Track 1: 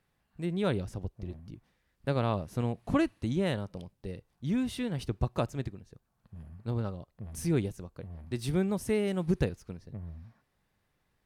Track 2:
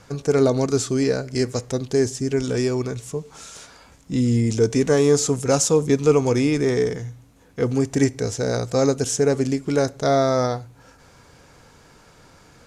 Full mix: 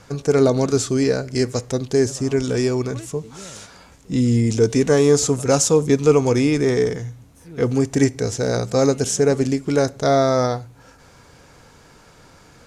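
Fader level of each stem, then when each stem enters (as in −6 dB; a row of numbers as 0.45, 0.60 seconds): −12.0, +2.0 decibels; 0.00, 0.00 seconds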